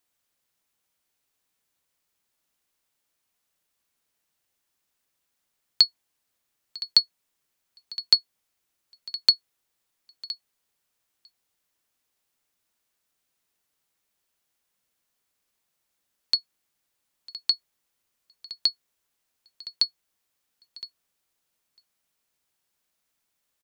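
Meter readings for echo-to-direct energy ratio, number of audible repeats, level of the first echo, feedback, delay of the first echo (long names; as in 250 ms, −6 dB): −16.0 dB, 1, −16.0 dB, repeats not evenly spaced, 1,015 ms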